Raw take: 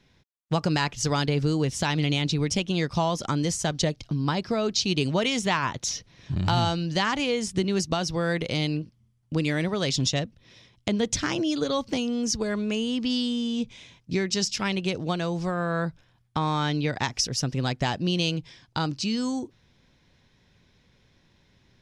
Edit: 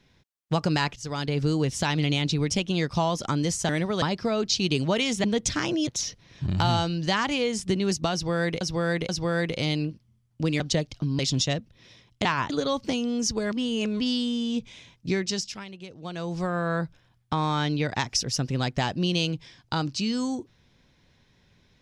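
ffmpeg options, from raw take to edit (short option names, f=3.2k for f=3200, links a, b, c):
-filter_complex "[0:a]asplit=16[a][b][c][d][e][f][g][h][i][j][k][l][m][n][o][p];[a]atrim=end=0.96,asetpts=PTS-STARTPTS,afade=t=out:st=0.956:d=0.004:c=hsin:silence=0.188365[q];[b]atrim=start=0.96:end=3.692,asetpts=PTS-STARTPTS,afade=t=in:d=0.51:silence=0.188365[r];[c]atrim=start=9.518:end=9.852[s];[d]atrim=start=4.278:end=5.502[t];[e]atrim=start=10.908:end=11.542[u];[f]atrim=start=5.748:end=8.492[v];[g]atrim=start=8.008:end=8.492[w];[h]atrim=start=8.008:end=9.522[x];[i]atrim=start=3.688:end=4.282[y];[j]atrim=start=9.848:end=10.912[z];[k]atrim=start=5.498:end=5.752[aa];[l]atrim=start=11.538:end=12.562[ab];[m]atrim=start=12.558:end=13.042,asetpts=PTS-STARTPTS,areverse[ac];[n]atrim=start=13.038:end=14.69,asetpts=PTS-STARTPTS,afade=t=out:st=1.182:d=0.47:silence=0.188365[ad];[o]atrim=start=14.69:end=15.02,asetpts=PTS-STARTPTS,volume=-14.5dB[ae];[p]atrim=start=15.02,asetpts=PTS-STARTPTS,afade=t=in:d=0.47:silence=0.188365[af];[q][r]concat=n=2:v=0:a=1[ag];[ag][s]acrossfade=d=0.004:c1=hsin:c2=hsin[ah];[ah][t]acrossfade=d=0.004:c1=hsin:c2=hsin[ai];[ai][u]acrossfade=d=0.004:c1=hsin:c2=hsin[aj];[aj][v]acrossfade=d=0.004:c1=hsin:c2=hsin[ak];[ak][w]acrossfade=d=0.004:c1=hsin:c2=hsin[al];[al][x]acrossfade=d=0.004:c1=hsin:c2=hsin[am];[am][y]acrossfade=d=0.004:c1=hsin:c2=hsin[an];[an][z]acrossfade=d=0.004:c1=hsin:c2=hsin[ao];[ao][aa]acrossfade=d=0.004:c1=hsin:c2=hsin[ap];[ap][ab]acrossfade=d=0.004:c1=hsin:c2=hsin[aq];[aq][ac]acrossfade=d=0.004:c1=hsin:c2=hsin[ar];[ad][ae][af]concat=n=3:v=0:a=1[as];[ar][as]acrossfade=d=0.004:c1=hsin:c2=hsin"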